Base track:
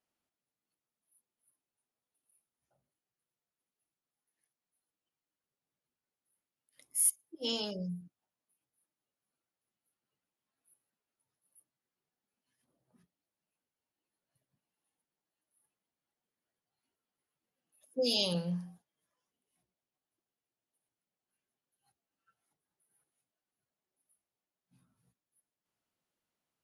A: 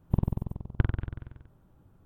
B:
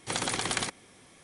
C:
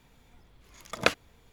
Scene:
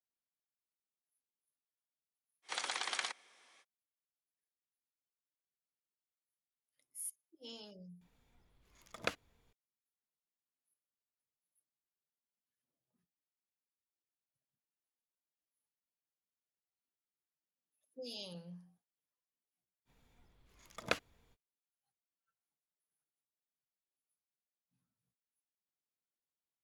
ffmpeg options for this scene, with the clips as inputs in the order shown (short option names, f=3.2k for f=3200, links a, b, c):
-filter_complex "[3:a]asplit=2[a][b];[0:a]volume=-16dB[c];[2:a]highpass=790,lowpass=6.4k,atrim=end=1.23,asetpts=PTS-STARTPTS,volume=-6dB,afade=t=in:d=0.05,afade=t=out:st=1.18:d=0.05,adelay=2420[d];[a]atrim=end=1.52,asetpts=PTS-STARTPTS,volume=-13.5dB,afade=t=in:d=0.004:c=hsin,afade=t=out:st=1.516:d=0.004:c=hsin,adelay=8010[e];[b]atrim=end=1.52,asetpts=PTS-STARTPTS,volume=-11dB,afade=t=in:d=0.05,afade=t=out:st=1.47:d=0.05,adelay=19850[f];[c][d][e][f]amix=inputs=4:normalize=0"